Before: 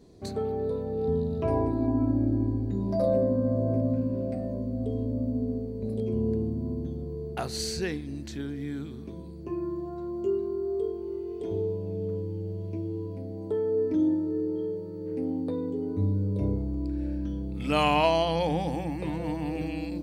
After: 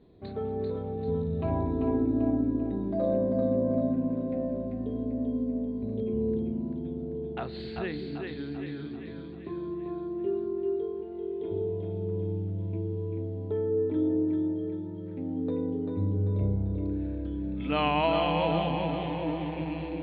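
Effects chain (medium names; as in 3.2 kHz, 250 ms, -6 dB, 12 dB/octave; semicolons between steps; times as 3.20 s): elliptic low-pass 3.8 kHz, stop band 40 dB; on a send: two-band feedback delay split 350 Hz, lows 194 ms, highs 391 ms, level -4 dB; on the sum: trim -2.5 dB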